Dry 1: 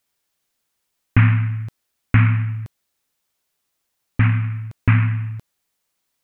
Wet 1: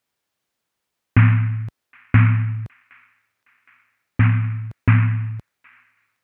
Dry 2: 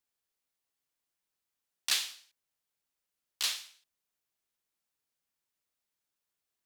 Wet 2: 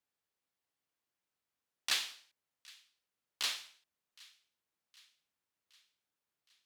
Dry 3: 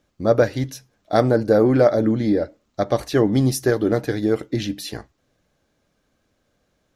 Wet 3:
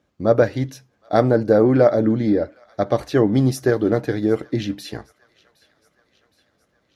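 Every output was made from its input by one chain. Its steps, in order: HPF 59 Hz; high shelf 4200 Hz -9 dB; on a send: thin delay 0.766 s, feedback 57%, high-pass 1400 Hz, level -23 dB; on the sum: gain +1 dB

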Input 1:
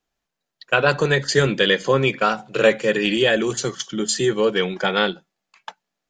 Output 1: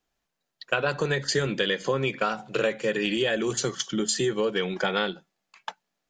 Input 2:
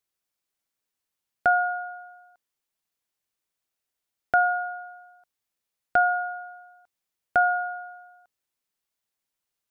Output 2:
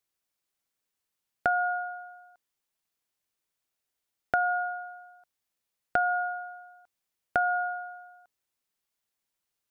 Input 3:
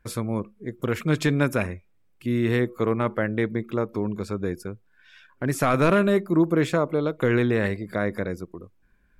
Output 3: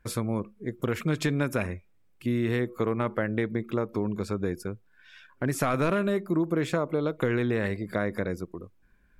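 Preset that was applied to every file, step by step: compressor 4:1, threshold -23 dBFS

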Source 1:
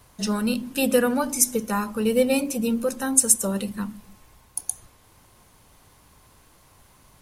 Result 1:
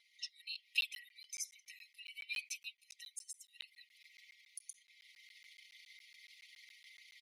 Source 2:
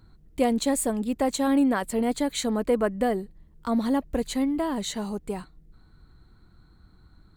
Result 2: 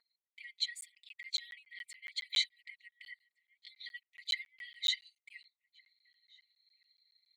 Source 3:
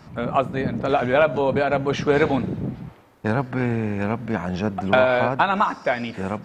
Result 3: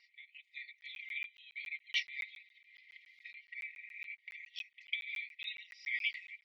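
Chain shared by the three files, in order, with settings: formant sharpening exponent 1.5; compressor 6:1, threshold -22 dBFS; brick-wall FIR high-pass 1900 Hz; bell 2700 Hz -9 dB 0.34 oct; comb 4.3 ms, depth 93%; outdoor echo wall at 250 m, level -26 dB; AGC gain up to 13 dB; air absorption 300 m; crackling interface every 0.14 s, samples 512, zero, from 0.81; mismatched tape noise reduction encoder only; gain -2.5 dB

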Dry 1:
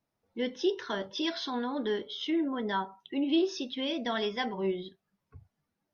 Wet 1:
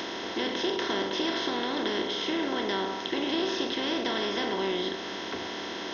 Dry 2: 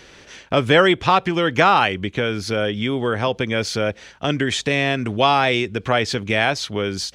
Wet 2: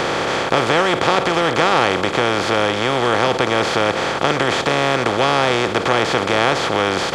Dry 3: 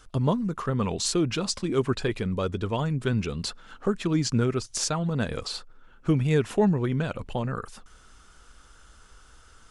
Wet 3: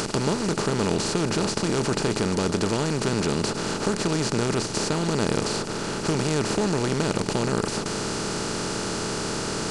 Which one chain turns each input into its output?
per-bin compression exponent 0.2; mismatched tape noise reduction encoder only; gain -7.5 dB

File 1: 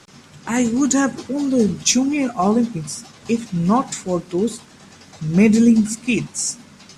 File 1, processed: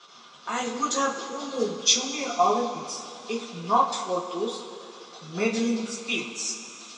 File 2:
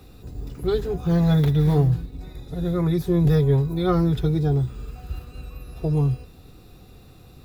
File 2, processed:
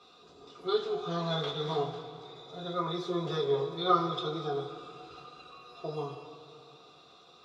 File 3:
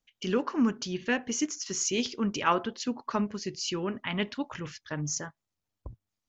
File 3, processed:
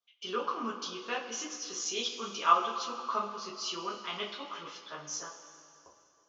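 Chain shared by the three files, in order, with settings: speaker cabinet 490–6100 Hz, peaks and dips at 1200 Hz +10 dB, 1800 Hz -10 dB, 3500 Hz +6 dB; two-slope reverb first 0.22 s, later 2.7 s, from -18 dB, DRR -4.5 dB; gain -8.5 dB

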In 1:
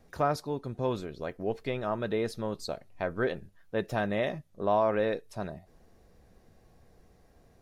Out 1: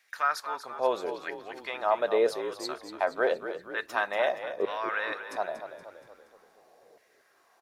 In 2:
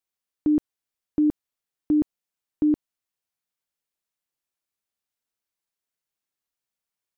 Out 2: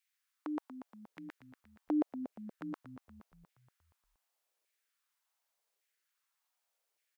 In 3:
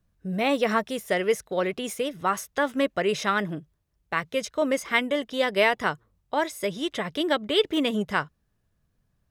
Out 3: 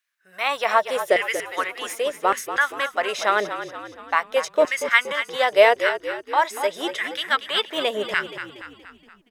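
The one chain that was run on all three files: LFO high-pass saw down 0.86 Hz 430–2100 Hz; frequency-shifting echo 0.236 s, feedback 52%, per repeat -44 Hz, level -10.5 dB; gain +2.5 dB

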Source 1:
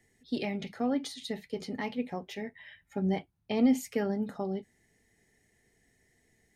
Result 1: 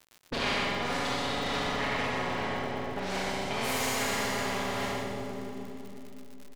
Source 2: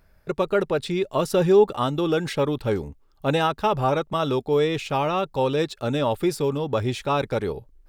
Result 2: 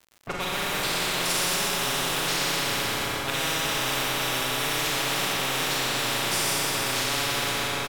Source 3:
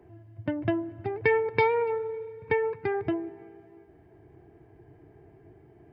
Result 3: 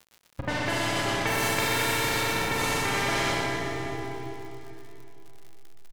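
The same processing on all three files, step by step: level-crossing sampler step -34.5 dBFS; low-pass opened by the level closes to 1800 Hz, open at -20 dBFS; low shelf 120 Hz +11 dB; notches 50/100/150/200/250/300/350/400 Hz; comb 7.2 ms, depth 31%; Schroeder reverb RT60 3.2 s, combs from 31 ms, DRR -7.5 dB; reverse; upward compressor, threshold -13 dBFS; reverse; crackle 76/s -43 dBFS; on a send: echo 0.121 s -5.5 dB; on the sum: spectral compressor 10:1

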